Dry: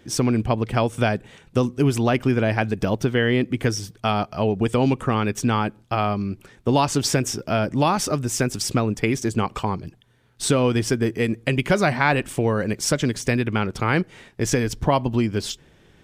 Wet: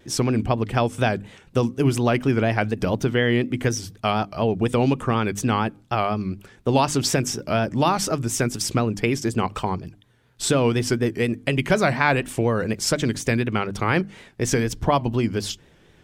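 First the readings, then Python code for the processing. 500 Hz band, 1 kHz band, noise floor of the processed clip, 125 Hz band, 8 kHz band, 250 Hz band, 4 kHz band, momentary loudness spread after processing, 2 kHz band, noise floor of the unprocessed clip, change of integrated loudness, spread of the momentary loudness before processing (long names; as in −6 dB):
0.0 dB, 0.0 dB, −54 dBFS, −0.5 dB, 0.0 dB, −1.0 dB, 0.0 dB, 6 LU, 0.0 dB, −55 dBFS, −0.5 dB, 6 LU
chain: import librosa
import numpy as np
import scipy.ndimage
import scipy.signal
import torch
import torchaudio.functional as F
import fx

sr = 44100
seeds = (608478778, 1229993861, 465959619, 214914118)

y = fx.vibrato(x, sr, rate_hz=4.1, depth_cents=88.0)
y = fx.hum_notches(y, sr, base_hz=50, count=6)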